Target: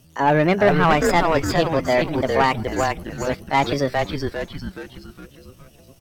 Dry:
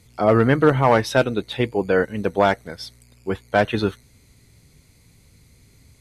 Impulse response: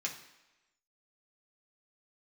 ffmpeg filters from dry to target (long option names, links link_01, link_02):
-filter_complex "[0:a]asplit=7[link_01][link_02][link_03][link_04][link_05][link_06][link_07];[link_02]adelay=412,afreqshift=-120,volume=-4dB[link_08];[link_03]adelay=824,afreqshift=-240,volume=-10.6dB[link_09];[link_04]adelay=1236,afreqshift=-360,volume=-17.1dB[link_10];[link_05]adelay=1648,afreqshift=-480,volume=-23.7dB[link_11];[link_06]adelay=2060,afreqshift=-600,volume=-30.2dB[link_12];[link_07]adelay=2472,afreqshift=-720,volume=-36.8dB[link_13];[link_01][link_08][link_09][link_10][link_11][link_12][link_13]amix=inputs=7:normalize=0,asetrate=58866,aresample=44100,atempo=0.749154,acontrast=49,volume=-5.5dB"